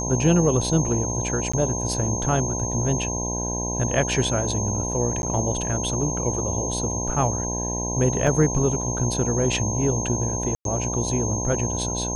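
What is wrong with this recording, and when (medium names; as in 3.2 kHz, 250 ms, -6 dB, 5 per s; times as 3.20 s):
buzz 60 Hz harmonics 17 -29 dBFS
whine 6.4 kHz -28 dBFS
1.52–1.53 s: dropout 15 ms
5.22–5.23 s: dropout 11 ms
8.27 s: dropout 4 ms
10.55–10.65 s: dropout 102 ms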